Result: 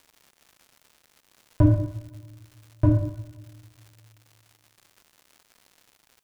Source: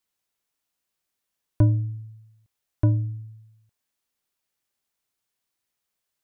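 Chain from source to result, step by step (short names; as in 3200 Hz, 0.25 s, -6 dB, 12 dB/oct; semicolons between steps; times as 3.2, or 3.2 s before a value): two-slope reverb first 0.76 s, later 2.2 s, from -20 dB, DRR -5.5 dB; crackle 230/s -42 dBFS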